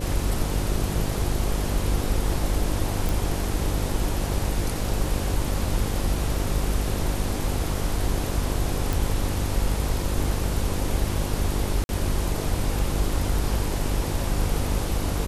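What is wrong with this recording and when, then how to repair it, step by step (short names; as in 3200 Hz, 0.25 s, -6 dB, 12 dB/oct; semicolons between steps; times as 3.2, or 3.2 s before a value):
buzz 50 Hz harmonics 11 -29 dBFS
3.09 pop
8.93 pop
11.84–11.89 gap 51 ms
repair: de-click; de-hum 50 Hz, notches 11; interpolate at 11.84, 51 ms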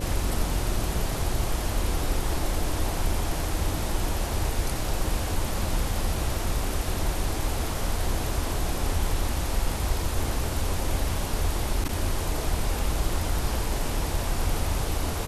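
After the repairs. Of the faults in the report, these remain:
none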